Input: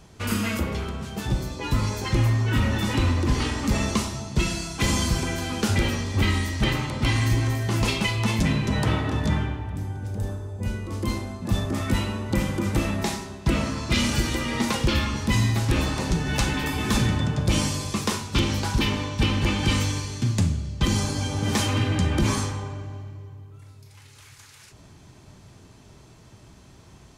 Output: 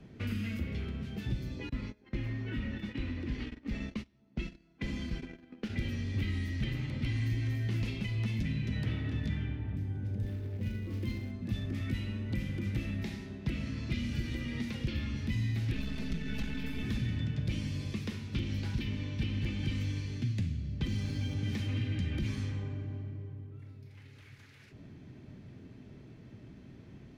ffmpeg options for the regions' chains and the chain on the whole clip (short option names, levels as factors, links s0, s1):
-filter_complex "[0:a]asettb=1/sr,asplit=3[s0][s1][s2];[s0]atrim=end=1.694[s3];[s1]atrim=start=1.69:end=5.78,asetpts=PTS-STARTPTS,afade=t=in:d=0.004:c=qsin,afade=t=out:st=4.086:d=0.004:c=qsin,agate=range=0.0562:threshold=0.0501:ratio=16:release=100:detection=peak,lowpass=f=2400:p=1,equalizer=f=100:w=1.4:g=-13.5[s4];[s2]atrim=start=5.776[s5];[s3][s4]acrossfade=d=0.004:c1=hsin:c2=qsin[s6];[s6][s5]acrossfade=d=0.004:c1=qsin:c2=hsin,asettb=1/sr,asplit=3[s7][s8][s9];[s7]atrim=end=10.264[s10];[s8]atrim=start=10.26:end=11.31,asetpts=PTS-STARTPTS,afade=t=in:d=0.004:c=qsin,afade=t=out:st=1.046:d=0.004:c=qsin,highpass=50,acrusher=bits=4:mode=log:mix=0:aa=0.000001[s11];[s9]atrim=start=11.306[s12];[s10][s11]acrossfade=d=0.004:c1=hsin:c2=qsin[s13];[s13][s12]acrossfade=d=0.004:c1=qsin:c2=hsin,asettb=1/sr,asplit=3[s14][s15][s16];[s14]atrim=end=15.734[s17];[s15]atrim=start=15.73:end=16.83,asetpts=PTS-STARTPTS,afade=t=in:d=0.004:c=qsin,afade=t=out:st=1.096:d=0.004:c=qsin,aeval=exprs='if(lt(val(0),0),0.251*val(0),val(0))':c=same,aecho=1:1:4.6:0.99,atrim=end_sample=48510[s18];[s16]atrim=start=16.826[s19];[s17][s18]acrossfade=d=0.004:c1=hsin:c2=qsin[s20];[s20][s19]acrossfade=d=0.004:c1=qsin:c2=hsin,asettb=1/sr,asplit=3[s21][s22][s23];[s21]atrim=end=20.874[s24];[s22]atrim=start=20.87:end=21.34,asetpts=PTS-STARTPTS,afade=t=in:d=0.004:c=qsin,afade=t=out:st=0.466:d=0.004:c=qsin,aeval=exprs='val(0)+0.5*0.015*sgn(val(0))':c=same,bandreject=f=7100:w=24[s25];[s23]atrim=start=21.336[s26];[s24][s25]acrossfade=d=0.004:c1=hsin:c2=qsin[s27];[s27][s26]acrossfade=d=0.004:c1=qsin:c2=hsin,equalizer=f=125:t=o:w=1:g=5,equalizer=f=250:t=o:w=1:g=10,equalizer=f=500:t=o:w=1:g=3,equalizer=f=1000:t=o:w=1:g=-8,equalizer=f=2000:t=o:w=1:g=6,equalizer=f=8000:t=o:w=1:g=-10,acrossover=split=120|2000|4400[s28][s29][s30][s31];[s28]acompressor=threshold=0.0562:ratio=4[s32];[s29]acompressor=threshold=0.0178:ratio=4[s33];[s30]acompressor=threshold=0.0112:ratio=4[s34];[s31]acompressor=threshold=0.00708:ratio=4[s35];[s32][s33][s34][s35]amix=inputs=4:normalize=0,aemphasis=mode=reproduction:type=cd,volume=0.422"